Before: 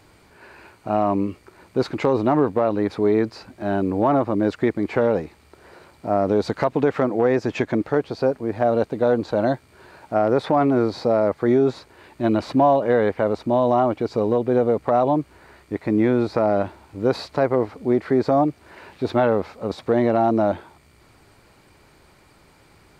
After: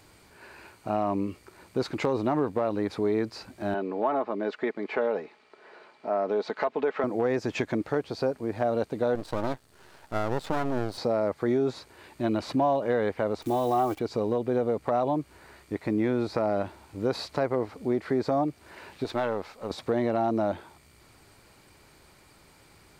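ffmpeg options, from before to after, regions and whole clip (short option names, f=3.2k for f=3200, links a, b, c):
-filter_complex "[0:a]asettb=1/sr,asplit=3[a][b][c];[a]atrim=end=3.744[d];[b]atrim=start=3.74:end=7.04,asetpts=PTS-STARTPTS,afade=t=in:d=0.004:c=qsin,afade=t=out:st=3.296:d=0.004:c=qsin,highpass=360,lowpass=3.3k,aecho=1:1:4.7:0.38,atrim=end_sample=145530[e];[c]atrim=start=7.036[f];[d][e]acrossfade=d=0.004:c1=hsin:c2=qsin[g];[g][f]acrossfade=d=0.004:c1=qsin:c2=hsin,asettb=1/sr,asplit=3[h][i][j];[h]atrim=end=9.154[k];[i]atrim=start=9.15:end=10.98,asetpts=PTS-STARTPTS,afade=t=in:d=0.004:c=qsin,afade=t=out:st=1.826:d=0.004:c=qsin,bandreject=f=2.3k:w=5.2,aeval=exprs='max(val(0),0)':c=same[l];[j]atrim=start=10.976[m];[k][l]acrossfade=d=0.004:c1=hsin:c2=qsin[n];[n][m]acrossfade=d=0.004:c1=qsin:c2=hsin,asettb=1/sr,asplit=3[o][p][q];[o]atrim=end=13.424[r];[p]atrim=start=13.42:end=13.99,asetpts=PTS-STARTPTS,afade=t=in:d=0.004:c=qsin,afade=t=out:st=0.566:d=0.004:c=qsin,aecho=1:1:2.6:0.71,atrim=end_sample=25137,acrusher=bits=8:dc=4:mix=0:aa=0.000001[s];[q]atrim=start=13.986[t];[r][s]acrossfade=d=0.004:c1=hsin:c2=qsin[u];[u][t]acrossfade=d=0.004:c1=qsin:c2=hsin,asettb=1/sr,asplit=3[v][w][x];[v]atrim=end=19.044[y];[w]atrim=start=19.04:end=19.71,asetpts=PTS-STARTPTS,afade=t=in:d=0.004:c=qsin,afade=t=out:st=0.666:d=0.004:c=qsin,aeval=exprs='if(lt(val(0),0),0.708*val(0),val(0))':c=same,lowshelf=f=400:g=-7[z];[x]atrim=start=19.706[aa];[y][z]acrossfade=d=0.004:c1=hsin:c2=qsin[ab];[ab][aa]acrossfade=d=0.004:c1=qsin:c2=hsin,acompressor=threshold=-24dB:ratio=1.5,highshelf=f=3.6k:g=6.5,volume=-4dB"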